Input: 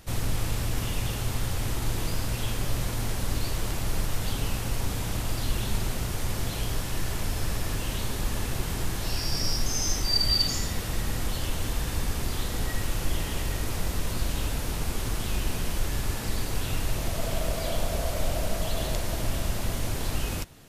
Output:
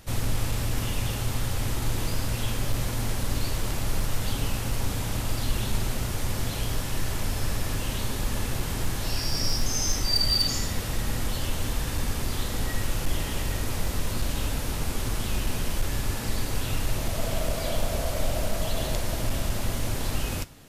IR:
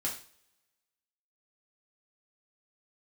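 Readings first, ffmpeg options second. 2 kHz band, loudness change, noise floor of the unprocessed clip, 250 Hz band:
+1.0 dB, +1.0 dB, -32 dBFS, +1.5 dB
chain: -filter_complex "[0:a]aeval=exprs='clip(val(0),-1,0.119)':c=same,asplit=2[s0][s1];[1:a]atrim=start_sample=2205[s2];[s1][s2]afir=irnorm=-1:irlink=0,volume=0.15[s3];[s0][s3]amix=inputs=2:normalize=0"

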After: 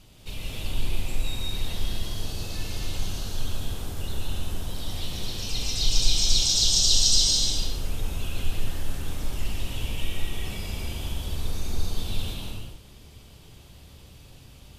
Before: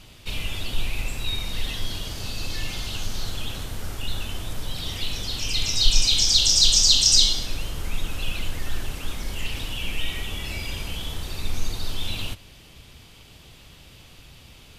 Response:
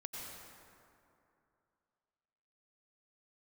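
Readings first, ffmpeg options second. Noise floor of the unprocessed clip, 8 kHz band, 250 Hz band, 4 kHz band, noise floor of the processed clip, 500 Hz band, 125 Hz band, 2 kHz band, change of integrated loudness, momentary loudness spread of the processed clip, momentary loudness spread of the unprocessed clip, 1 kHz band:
-49 dBFS, -3.0 dB, 0.0 dB, -4.5 dB, -49 dBFS, -0.5 dB, +0.5 dB, -6.5 dB, -3.5 dB, 16 LU, 18 LU, -2.5 dB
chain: -filter_complex "[0:a]equalizer=f=2100:w=0.54:g=-6[s0];[1:a]atrim=start_sample=2205,afade=t=out:st=0.39:d=0.01,atrim=end_sample=17640,asetrate=33075,aresample=44100[s1];[s0][s1]afir=irnorm=-1:irlink=0"

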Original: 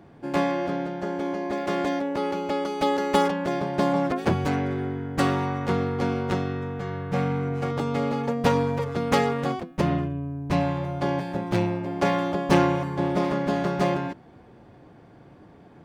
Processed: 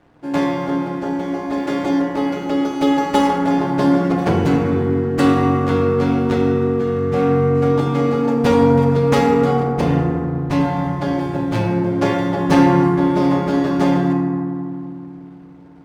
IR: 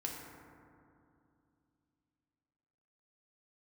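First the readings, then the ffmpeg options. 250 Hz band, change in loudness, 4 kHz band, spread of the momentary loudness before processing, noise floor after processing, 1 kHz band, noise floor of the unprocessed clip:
+10.5 dB, +8.5 dB, +4.0 dB, 7 LU, -37 dBFS, +6.0 dB, -51 dBFS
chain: -filter_complex "[0:a]aeval=exprs='sgn(val(0))*max(abs(val(0))-0.00299,0)':c=same[s0];[1:a]atrim=start_sample=2205[s1];[s0][s1]afir=irnorm=-1:irlink=0,volume=1.88"

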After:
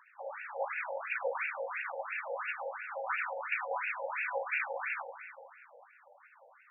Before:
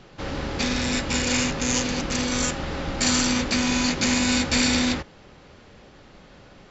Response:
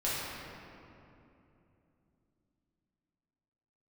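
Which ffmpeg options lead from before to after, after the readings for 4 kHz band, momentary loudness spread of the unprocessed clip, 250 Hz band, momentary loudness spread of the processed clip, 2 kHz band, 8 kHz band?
under -30 dB, 10 LU, under -40 dB, 12 LU, -7.0 dB, no reading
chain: -filter_complex "[0:a]aphaser=in_gain=1:out_gain=1:delay=3.5:decay=0.49:speed=1.6:type=sinusoidal,asplit=2[s0][s1];[1:a]atrim=start_sample=2205,highshelf=f=4300:g=9.5[s2];[s1][s2]afir=irnorm=-1:irlink=0,volume=0.237[s3];[s0][s3]amix=inputs=2:normalize=0,afftfilt=real='re*between(b*sr/1024,630*pow(2000/630,0.5+0.5*sin(2*PI*2.9*pts/sr))/1.41,630*pow(2000/630,0.5+0.5*sin(2*PI*2.9*pts/sr))*1.41)':imag='im*between(b*sr/1024,630*pow(2000/630,0.5+0.5*sin(2*PI*2.9*pts/sr))/1.41,630*pow(2000/630,0.5+0.5*sin(2*PI*2.9*pts/sr))*1.41)':win_size=1024:overlap=0.75,volume=0.473"

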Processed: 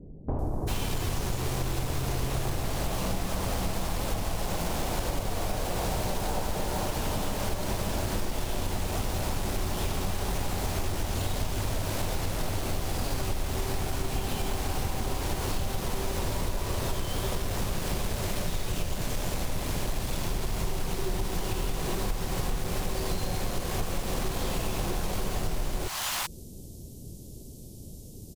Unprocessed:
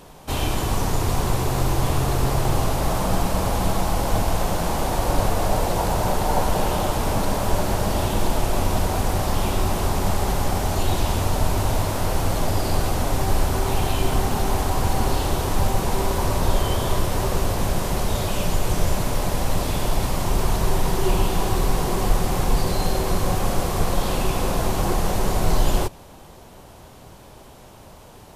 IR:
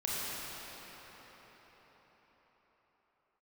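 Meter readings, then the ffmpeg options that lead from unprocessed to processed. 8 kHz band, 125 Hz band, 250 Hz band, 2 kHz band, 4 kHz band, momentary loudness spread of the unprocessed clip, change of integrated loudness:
-6.0 dB, -8.5 dB, -8.5 dB, -6.5 dB, -5.5 dB, 2 LU, -8.5 dB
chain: -filter_complex "[0:a]acrossover=split=410|4800[s0][s1][s2];[s1]acrusher=bits=4:mix=0:aa=0.000001[s3];[s0][s3][s2]amix=inputs=3:normalize=0,acrossover=split=900[s4][s5];[s5]adelay=390[s6];[s4][s6]amix=inputs=2:normalize=0,acompressor=threshold=0.0316:ratio=6,volume=1.5"

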